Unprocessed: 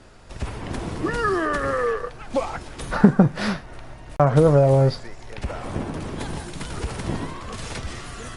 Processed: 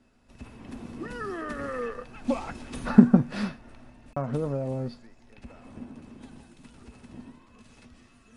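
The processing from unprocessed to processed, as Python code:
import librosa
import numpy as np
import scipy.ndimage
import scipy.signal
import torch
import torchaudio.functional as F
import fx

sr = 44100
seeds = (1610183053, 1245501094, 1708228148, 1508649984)

y = fx.doppler_pass(x, sr, speed_mps=10, closest_m=6.9, pass_at_s=2.62)
y = fx.small_body(y, sr, hz=(240.0, 2600.0), ring_ms=100, db=16)
y = y * 10.0 ** (-6.5 / 20.0)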